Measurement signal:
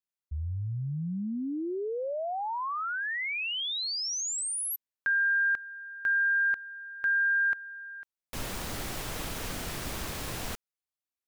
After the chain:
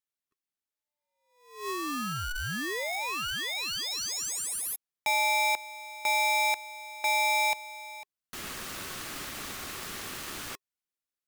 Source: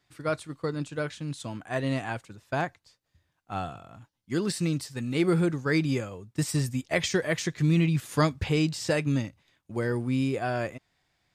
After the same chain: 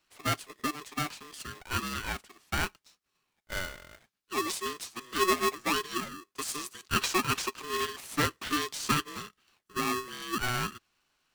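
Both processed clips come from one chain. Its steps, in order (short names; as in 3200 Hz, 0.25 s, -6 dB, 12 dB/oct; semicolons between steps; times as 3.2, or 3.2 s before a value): one-sided clip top -17.5 dBFS; Chebyshev high-pass 340 Hz, order 6; polarity switched at an audio rate 740 Hz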